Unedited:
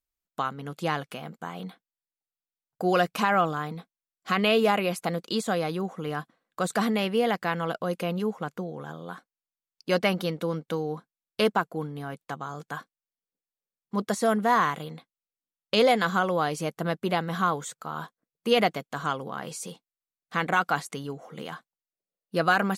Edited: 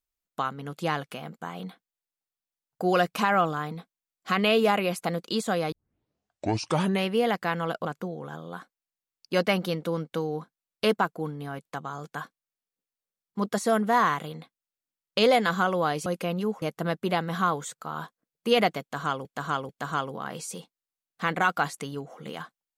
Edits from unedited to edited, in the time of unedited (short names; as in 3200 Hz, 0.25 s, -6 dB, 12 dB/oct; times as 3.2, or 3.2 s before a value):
5.72 tape start 1.35 s
7.85–8.41 move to 16.62
18.81–19.25 loop, 3 plays